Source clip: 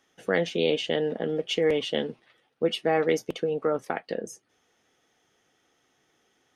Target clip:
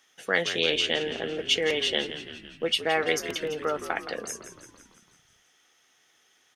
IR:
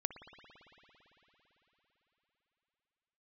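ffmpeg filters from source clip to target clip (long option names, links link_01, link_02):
-filter_complex "[0:a]tiltshelf=frequency=880:gain=-8,asplit=8[link_01][link_02][link_03][link_04][link_05][link_06][link_07][link_08];[link_02]adelay=168,afreqshift=-58,volume=-11.5dB[link_09];[link_03]adelay=336,afreqshift=-116,volume=-16.1dB[link_10];[link_04]adelay=504,afreqshift=-174,volume=-20.7dB[link_11];[link_05]adelay=672,afreqshift=-232,volume=-25.2dB[link_12];[link_06]adelay=840,afreqshift=-290,volume=-29.8dB[link_13];[link_07]adelay=1008,afreqshift=-348,volume=-34.4dB[link_14];[link_08]adelay=1176,afreqshift=-406,volume=-39dB[link_15];[link_01][link_09][link_10][link_11][link_12][link_13][link_14][link_15]amix=inputs=8:normalize=0"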